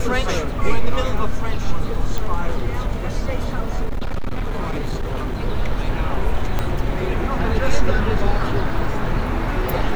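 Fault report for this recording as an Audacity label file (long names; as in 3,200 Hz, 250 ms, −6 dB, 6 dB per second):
2.180000	2.180000	click
3.850000	5.380000	clipping −18 dBFS
6.590000	6.590000	click −8 dBFS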